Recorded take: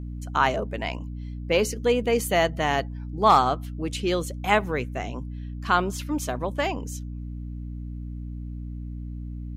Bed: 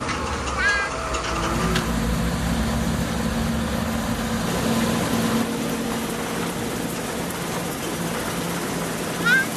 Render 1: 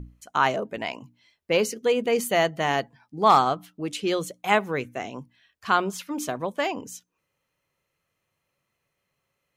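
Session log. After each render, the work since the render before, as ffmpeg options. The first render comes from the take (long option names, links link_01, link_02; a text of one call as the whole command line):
ffmpeg -i in.wav -af "bandreject=frequency=60:width_type=h:width=6,bandreject=frequency=120:width_type=h:width=6,bandreject=frequency=180:width_type=h:width=6,bandreject=frequency=240:width_type=h:width=6,bandreject=frequency=300:width_type=h:width=6" out.wav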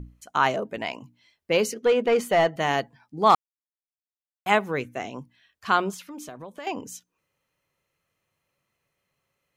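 ffmpeg -i in.wav -filter_complex "[0:a]asettb=1/sr,asplit=3[link_01][link_02][link_03];[link_01]atrim=end=1.744[link_04];[link_02]atrim=start=1.74:end=2.56,asetpts=PTS-STARTPTS,afade=type=in:duration=0.004:curve=qsin,afade=type=out:start_time=0.816:duration=0.004:curve=qsin,asplit=2[link_05][link_06];[link_06]highpass=frequency=720:poles=1,volume=14dB,asoftclip=type=tanh:threshold=-10dB[link_07];[link_05][link_07]amix=inputs=2:normalize=0,lowpass=frequency=1400:poles=1,volume=-6dB[link_08];[link_03]atrim=start=2.556[link_09];[link_04][link_08]acrossfade=duration=0.004:curve1=hsin:curve2=qsin[link_10];[link_10][link_09]acrossfade=duration=0.004:curve1=qsin:curve2=hsin,asettb=1/sr,asplit=3[link_11][link_12][link_13];[link_11]atrim=end=5.944[link_14];[link_12]atrim=start=5.94:end=6.67,asetpts=PTS-STARTPTS,afade=type=in:duration=0.004:curve=qsin,afade=type=out:start_time=0.726:duration=0.004:curve=qsin,acompressor=threshold=-39dB:ratio=3:attack=3.2:release=140:knee=1:detection=peak[link_15];[link_13]atrim=start=6.666[link_16];[link_14][link_15]acrossfade=duration=0.004:curve1=hsin:curve2=qsin[link_17];[link_17][link_16]acrossfade=duration=0.004:curve1=qsin:curve2=hsin,asplit=3[link_18][link_19][link_20];[link_18]atrim=end=3.35,asetpts=PTS-STARTPTS,afade=type=out:start_time=3.346:duration=0.004:curve=hsin[link_21];[link_19]atrim=start=3.35:end=4.46,asetpts=PTS-STARTPTS,volume=0[link_22];[link_20]atrim=start=4.46,asetpts=PTS-STARTPTS,afade=type=in:duration=0.004:curve=hsin[link_23];[link_21][link_22][link_23]concat=n=3:v=0:a=1" out.wav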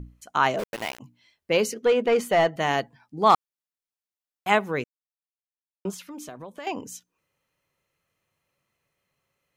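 ffmpeg -i in.wav -filter_complex "[0:a]asplit=3[link_01][link_02][link_03];[link_01]afade=type=out:start_time=0.58:duration=0.02[link_04];[link_02]aeval=exprs='val(0)*gte(abs(val(0)),0.0299)':channel_layout=same,afade=type=in:start_time=0.58:duration=0.02,afade=type=out:start_time=0.99:duration=0.02[link_05];[link_03]afade=type=in:start_time=0.99:duration=0.02[link_06];[link_04][link_05][link_06]amix=inputs=3:normalize=0,asplit=3[link_07][link_08][link_09];[link_07]atrim=end=4.84,asetpts=PTS-STARTPTS,afade=type=out:start_time=4.836:duration=0.004:curve=hsin[link_10];[link_08]atrim=start=4.84:end=5.85,asetpts=PTS-STARTPTS,volume=0[link_11];[link_09]atrim=start=5.85,asetpts=PTS-STARTPTS,afade=type=in:duration=0.004:curve=hsin[link_12];[link_10][link_11][link_12]concat=n=3:v=0:a=1" out.wav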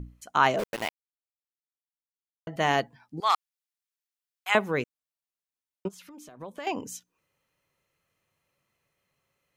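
ffmpeg -i in.wav -filter_complex "[0:a]asettb=1/sr,asplit=3[link_01][link_02][link_03];[link_01]atrim=end=3.204[link_04];[link_02]atrim=start=3.2:end=4.55,asetpts=PTS-STARTPTS,afade=type=in:duration=0.004:curve=qsin,afade=type=out:start_time=1.346:duration=0.004:curve=qsin,highpass=1400[link_05];[link_03]atrim=start=4.546[link_06];[link_04][link_05]acrossfade=duration=0.004:curve1=hsin:curve2=qsin[link_07];[link_07][link_06]acrossfade=duration=0.004:curve1=qsin:curve2=hsin,asplit=3[link_08][link_09][link_10];[link_08]afade=type=out:start_time=5.87:duration=0.02[link_11];[link_09]acompressor=threshold=-46dB:ratio=4:attack=3.2:release=140:knee=1:detection=peak,afade=type=in:start_time=5.87:duration=0.02,afade=type=out:start_time=6.4:duration=0.02[link_12];[link_10]afade=type=in:start_time=6.4:duration=0.02[link_13];[link_11][link_12][link_13]amix=inputs=3:normalize=0,asplit=3[link_14][link_15][link_16];[link_14]atrim=end=0.89,asetpts=PTS-STARTPTS,afade=type=out:start_time=0.886:duration=0.004:curve=hsin[link_17];[link_15]atrim=start=0.89:end=2.47,asetpts=PTS-STARTPTS,volume=0[link_18];[link_16]atrim=start=2.47,asetpts=PTS-STARTPTS,afade=type=in:duration=0.004:curve=hsin[link_19];[link_17][link_18][link_19]concat=n=3:v=0:a=1" out.wav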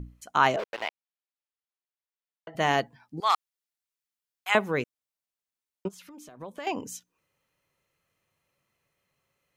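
ffmpeg -i in.wav -filter_complex "[0:a]asettb=1/sr,asplit=3[link_01][link_02][link_03];[link_01]atrim=end=0.564[link_04];[link_02]atrim=start=0.56:end=2.55,asetpts=PTS-STARTPTS,afade=type=in:duration=0.004:curve=qsin,afade=type=out:start_time=1.986:duration=0.004:curve=qsin,acrossover=split=410 5100:gain=0.178 1 0.112[link_05][link_06][link_07];[link_05][link_06][link_07]amix=inputs=3:normalize=0[link_08];[link_03]atrim=start=2.546[link_09];[link_04][link_08]acrossfade=duration=0.004:curve1=hsin:curve2=qsin[link_10];[link_10][link_09]acrossfade=duration=0.004:curve1=qsin:curve2=hsin" out.wav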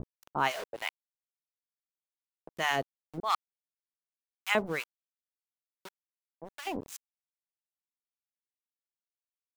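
ffmpeg -i in.wav -filter_complex "[0:a]aeval=exprs='val(0)*gte(abs(val(0)),0.0178)':channel_layout=same,acrossover=split=840[link_01][link_02];[link_01]aeval=exprs='val(0)*(1-1/2+1/2*cos(2*PI*2.8*n/s))':channel_layout=same[link_03];[link_02]aeval=exprs='val(0)*(1-1/2-1/2*cos(2*PI*2.8*n/s))':channel_layout=same[link_04];[link_03][link_04]amix=inputs=2:normalize=0" out.wav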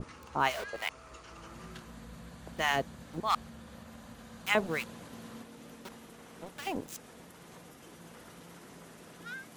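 ffmpeg -i in.wav -i bed.wav -filter_complex "[1:a]volume=-25.5dB[link_01];[0:a][link_01]amix=inputs=2:normalize=0" out.wav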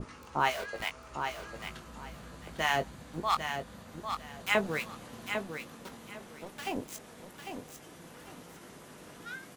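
ffmpeg -i in.wav -filter_complex "[0:a]asplit=2[link_01][link_02];[link_02]adelay=20,volume=-8.5dB[link_03];[link_01][link_03]amix=inputs=2:normalize=0,aecho=1:1:800|1600|2400:0.447|0.0983|0.0216" out.wav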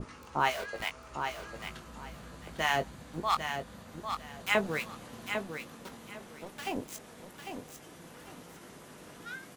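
ffmpeg -i in.wav -af anull out.wav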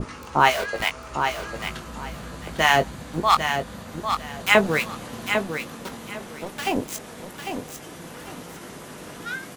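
ffmpeg -i in.wav -af "volume=11dB" out.wav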